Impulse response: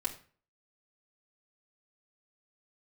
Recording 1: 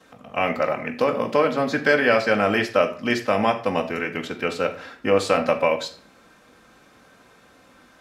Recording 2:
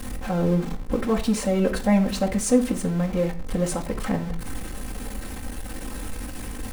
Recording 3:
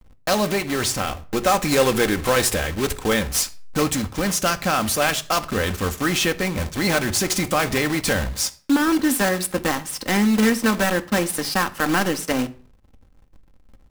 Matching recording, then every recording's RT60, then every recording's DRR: 2; 0.40, 0.40, 0.40 seconds; −8.0, −3.0, 6.5 decibels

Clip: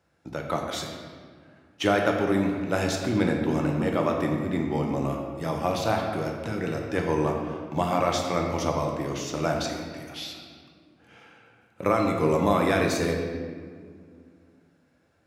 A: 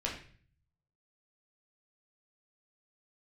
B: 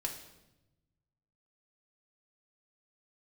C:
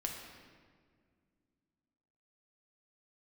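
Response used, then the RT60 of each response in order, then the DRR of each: C; 0.45, 0.95, 1.9 seconds; −3.0, 0.0, 0.5 decibels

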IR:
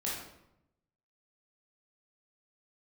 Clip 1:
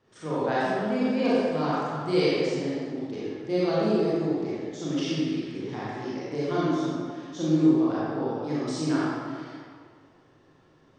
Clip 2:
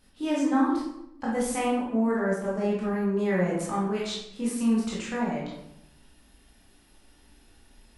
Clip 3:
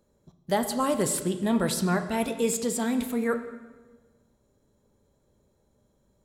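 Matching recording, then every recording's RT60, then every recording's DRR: 2; 2.0, 0.85, 1.3 seconds; −9.0, −6.5, 7.5 decibels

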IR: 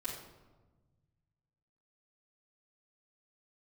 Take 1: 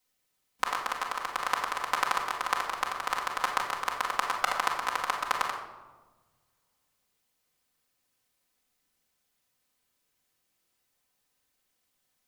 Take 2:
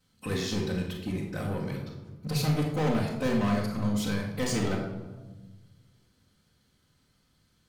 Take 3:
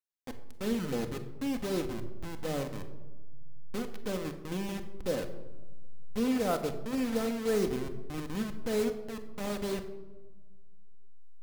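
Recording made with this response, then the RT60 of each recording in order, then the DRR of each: 2; 1.3, 1.3, 1.3 seconds; −3.5, −9.0, 5.5 decibels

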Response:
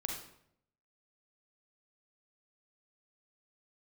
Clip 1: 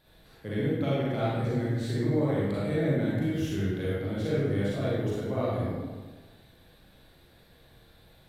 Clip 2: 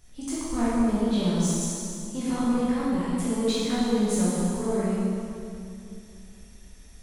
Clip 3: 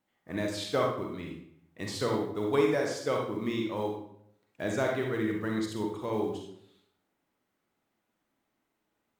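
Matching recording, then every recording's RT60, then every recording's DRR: 3; 1.4, 2.7, 0.70 seconds; −8.0, −9.0, 0.5 decibels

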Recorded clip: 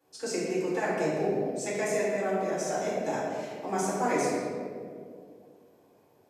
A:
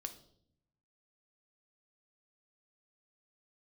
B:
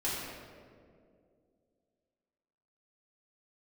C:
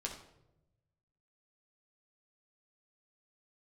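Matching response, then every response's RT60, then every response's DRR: B; 0.65 s, 2.3 s, non-exponential decay; 7.0, −9.5, −1.5 decibels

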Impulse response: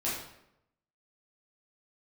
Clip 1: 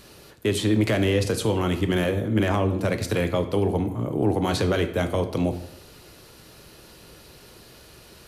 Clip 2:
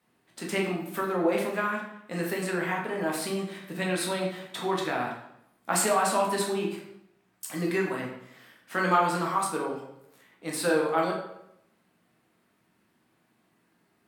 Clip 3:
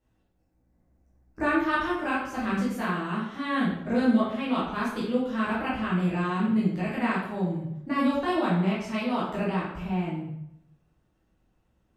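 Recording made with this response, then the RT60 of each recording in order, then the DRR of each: 3; 0.80, 0.80, 0.80 seconds; 7.5, −2.0, −8.5 decibels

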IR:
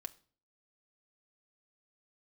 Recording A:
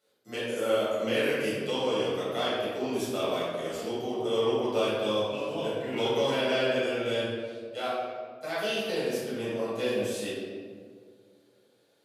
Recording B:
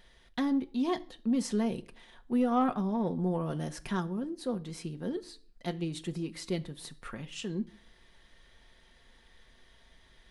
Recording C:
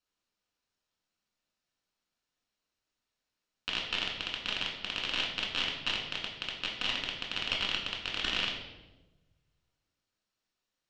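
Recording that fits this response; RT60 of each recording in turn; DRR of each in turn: B; 1.9, 0.45, 1.1 seconds; −10.5, 6.0, −2.0 decibels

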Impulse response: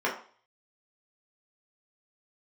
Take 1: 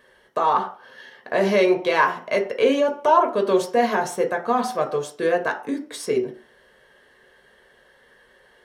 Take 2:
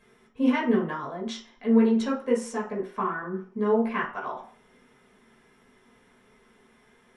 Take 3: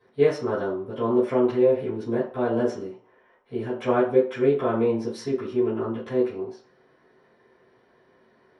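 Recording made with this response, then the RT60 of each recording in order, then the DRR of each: 2; 0.45, 0.45, 0.45 seconds; 3.5, −5.0, −14.0 decibels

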